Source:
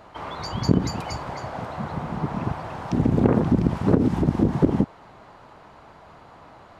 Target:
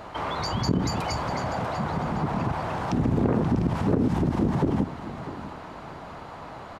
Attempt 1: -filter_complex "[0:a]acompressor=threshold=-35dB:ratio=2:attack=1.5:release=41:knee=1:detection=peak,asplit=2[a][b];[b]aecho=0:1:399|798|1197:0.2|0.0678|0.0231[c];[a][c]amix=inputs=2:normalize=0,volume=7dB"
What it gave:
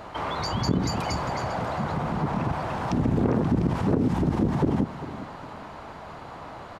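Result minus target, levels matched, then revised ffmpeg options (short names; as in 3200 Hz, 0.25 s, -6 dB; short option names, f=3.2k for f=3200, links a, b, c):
echo 0.246 s early
-filter_complex "[0:a]acompressor=threshold=-35dB:ratio=2:attack=1.5:release=41:knee=1:detection=peak,asplit=2[a][b];[b]aecho=0:1:645|1290|1935:0.2|0.0678|0.0231[c];[a][c]amix=inputs=2:normalize=0,volume=7dB"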